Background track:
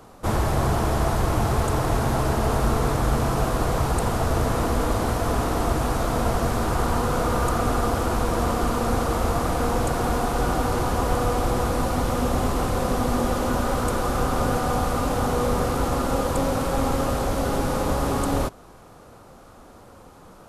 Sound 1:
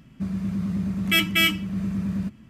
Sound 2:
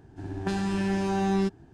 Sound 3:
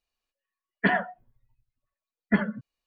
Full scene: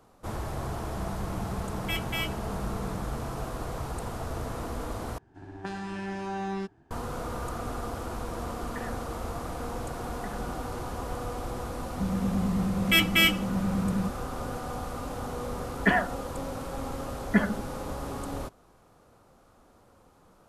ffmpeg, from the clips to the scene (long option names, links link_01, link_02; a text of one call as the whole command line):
ffmpeg -i bed.wav -i cue0.wav -i cue1.wav -i cue2.wav -filter_complex "[1:a]asplit=2[link_01][link_02];[3:a]asplit=2[link_03][link_04];[0:a]volume=-12dB[link_05];[2:a]equalizer=frequency=1200:width_type=o:width=2.7:gain=8[link_06];[link_03]acompressor=threshold=-29dB:ratio=6:attack=3.2:release=140:knee=1:detection=peak[link_07];[link_05]asplit=2[link_08][link_09];[link_08]atrim=end=5.184[link_10];[link_06]atrim=end=1.73,asetpts=PTS-STARTPTS,volume=-10.5dB[link_11];[link_09]atrim=start=6.906[link_12];[link_01]atrim=end=2.49,asetpts=PTS-STARTPTS,volume=-13dB,afade=type=in:duration=0.004:curve=hsin,afade=type=out:start_time=2.486:duration=0.004:curve=hsin,adelay=770[link_13];[link_07]atrim=end=2.86,asetpts=PTS-STARTPTS,volume=-8.5dB,afade=type=in:duration=0.004:curve=hsin,afade=type=out:start_time=2.856:duration=0.004:curve=hsin,adelay=7920[link_14];[link_02]atrim=end=2.49,asetpts=PTS-STARTPTS,volume=-1.5dB,afade=type=in:duration=0.004:curve=hsin,afade=type=out:start_time=2.486:duration=0.004:curve=hsin,adelay=11800[link_15];[link_04]atrim=end=2.86,asetpts=PTS-STARTPTS,afade=type=in:duration=0.004:curve=hsin,afade=type=out:start_time=2.856:duration=0.004:curve=hsin,adelay=15020[link_16];[link_10][link_11]acrossfade=duration=0.004:curve1=hsin:curve2=hsin[link_17];[link_17][link_12]acrossfade=duration=0.004:curve1=hsin:curve2=hsin[link_18];[link_18][link_13][link_14][link_15][link_16]amix=inputs=5:normalize=0" out.wav